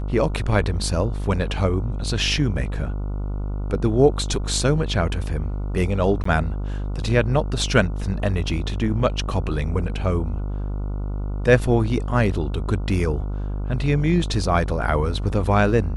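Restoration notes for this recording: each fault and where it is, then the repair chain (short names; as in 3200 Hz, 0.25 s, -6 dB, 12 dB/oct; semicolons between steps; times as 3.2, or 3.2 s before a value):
buzz 50 Hz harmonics 29 -26 dBFS
6.24–6.25 gap 14 ms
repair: de-hum 50 Hz, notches 29; interpolate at 6.24, 14 ms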